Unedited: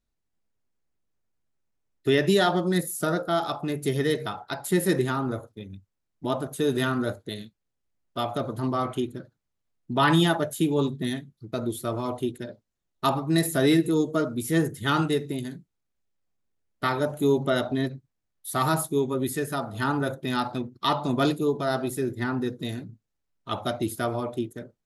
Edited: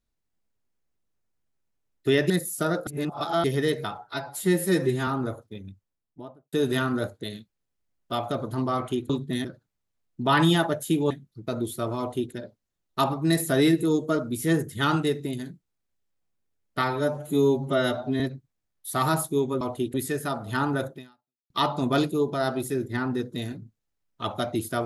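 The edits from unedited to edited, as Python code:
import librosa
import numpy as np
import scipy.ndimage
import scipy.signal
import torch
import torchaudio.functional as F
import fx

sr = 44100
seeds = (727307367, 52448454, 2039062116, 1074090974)

y = fx.studio_fade_out(x, sr, start_s=5.67, length_s=0.91)
y = fx.edit(y, sr, fx.cut(start_s=2.3, length_s=0.42),
    fx.reverse_span(start_s=3.29, length_s=0.57),
    fx.stretch_span(start_s=4.4, length_s=0.73, factor=1.5),
    fx.move(start_s=10.81, length_s=0.35, to_s=9.15),
    fx.duplicate(start_s=12.04, length_s=0.33, to_s=19.21),
    fx.stretch_span(start_s=16.89, length_s=0.91, factor=1.5),
    fx.fade_out_span(start_s=20.2, length_s=0.57, curve='exp'), tone=tone)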